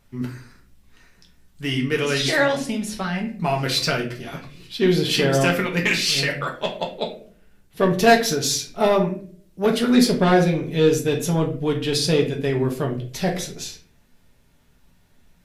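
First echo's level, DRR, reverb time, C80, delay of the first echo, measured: no echo, 0.5 dB, 0.50 s, 14.0 dB, no echo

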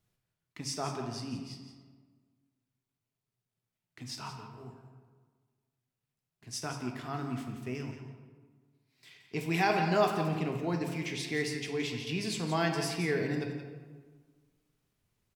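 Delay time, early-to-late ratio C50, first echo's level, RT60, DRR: 173 ms, 4.5 dB, -10.5 dB, 1.5 s, 2.0 dB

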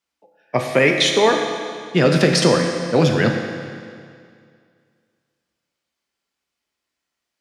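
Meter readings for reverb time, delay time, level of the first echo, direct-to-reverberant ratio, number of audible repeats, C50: 2.2 s, no echo, no echo, 2.0 dB, no echo, 4.0 dB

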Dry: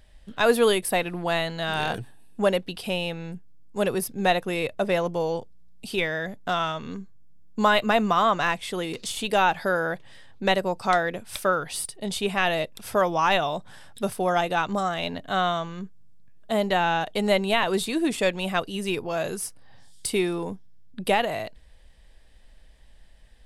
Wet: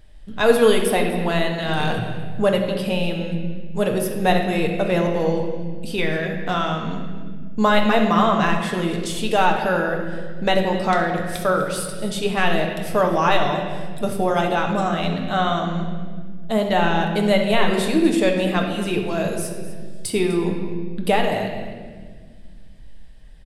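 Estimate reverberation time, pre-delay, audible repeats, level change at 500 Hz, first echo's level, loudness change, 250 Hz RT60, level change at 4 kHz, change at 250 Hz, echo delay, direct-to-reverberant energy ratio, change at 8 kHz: 1.7 s, 7 ms, 1, +5.0 dB, -15.0 dB, +4.0 dB, 2.9 s, +2.0 dB, +8.0 dB, 250 ms, 1.5 dB, +1.0 dB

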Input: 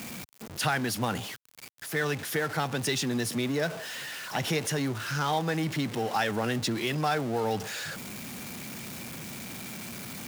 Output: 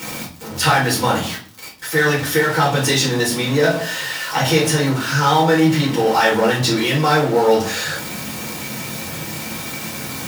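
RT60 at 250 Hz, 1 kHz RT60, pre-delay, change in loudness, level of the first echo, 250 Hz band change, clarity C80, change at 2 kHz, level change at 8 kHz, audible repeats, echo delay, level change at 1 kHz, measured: 0.65 s, 0.45 s, 4 ms, +13.0 dB, no echo, +12.0 dB, 13.5 dB, +13.0 dB, +11.5 dB, no echo, no echo, +13.0 dB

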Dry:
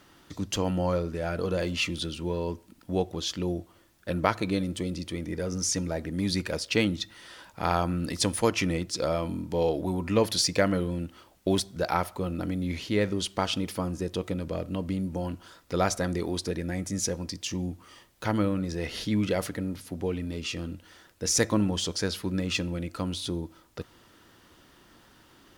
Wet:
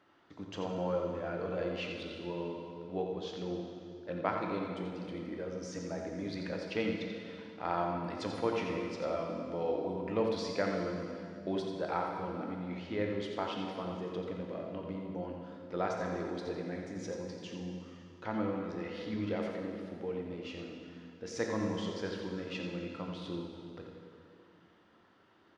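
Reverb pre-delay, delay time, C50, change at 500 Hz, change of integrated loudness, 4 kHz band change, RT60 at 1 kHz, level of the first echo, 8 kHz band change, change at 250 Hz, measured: 9 ms, 87 ms, 1.5 dB, -5.5 dB, -8.5 dB, -14.0 dB, 2.3 s, -8.0 dB, -22.0 dB, -8.0 dB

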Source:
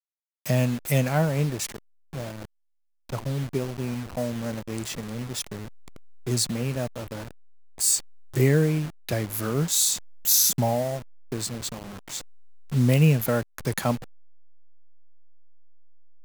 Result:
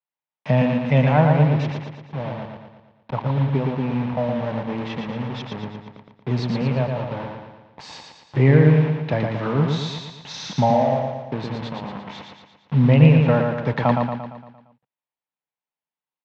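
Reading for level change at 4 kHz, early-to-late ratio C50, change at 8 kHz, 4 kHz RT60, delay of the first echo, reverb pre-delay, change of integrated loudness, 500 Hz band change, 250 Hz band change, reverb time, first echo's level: -3.5 dB, no reverb, under -20 dB, no reverb, 115 ms, no reverb, +4.5 dB, +6.0 dB, +7.0 dB, no reverb, -4.0 dB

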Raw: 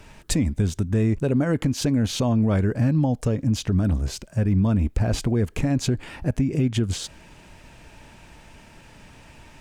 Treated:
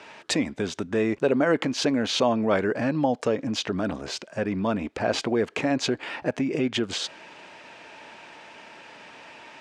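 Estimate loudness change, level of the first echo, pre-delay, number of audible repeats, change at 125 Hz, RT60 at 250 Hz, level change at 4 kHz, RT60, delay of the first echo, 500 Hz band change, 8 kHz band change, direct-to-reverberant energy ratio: -2.5 dB, no echo, no reverb, no echo, -14.5 dB, no reverb, +4.0 dB, no reverb, no echo, +4.0 dB, -2.5 dB, no reverb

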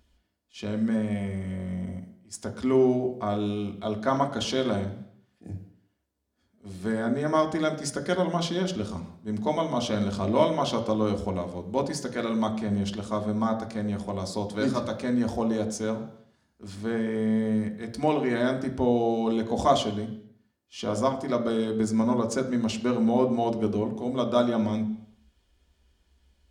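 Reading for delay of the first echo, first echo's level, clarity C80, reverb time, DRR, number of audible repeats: no echo, no echo, 13.0 dB, 0.70 s, 3.0 dB, no echo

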